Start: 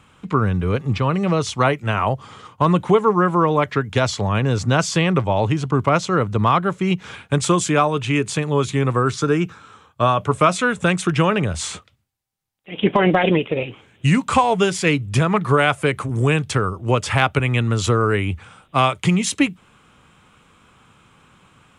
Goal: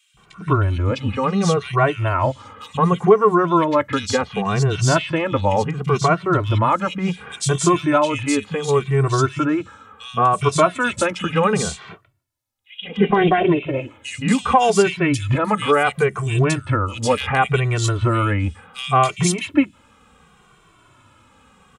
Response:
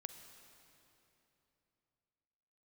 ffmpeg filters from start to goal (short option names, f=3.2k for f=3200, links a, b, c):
-filter_complex "[0:a]asettb=1/sr,asplit=3[a][b][c];[a]atrim=end=12.854[d];[b]atrim=start=12.85:end=13.27,asetpts=PTS-STARTPTS,afade=t=in:d=0.004:c=qsin,afade=t=out:st=0.416:d=0.004:c=qsin,lowpass=6.3k[e];[c]atrim=start=13.266[f];[d][e]acrossfade=d=0.004:c1=hsin:c2=qsin[g];[g][f]acrossfade=d=0.004:c1=qsin:c2=hsin,acrossover=split=170|2500[h][i][j];[h]adelay=140[k];[i]adelay=170[l];[k][l][j]amix=inputs=3:normalize=0,asplit=2[m][n];[n]adelay=2.1,afreqshift=-0.69[o];[m][o]amix=inputs=2:normalize=1,volume=4dB"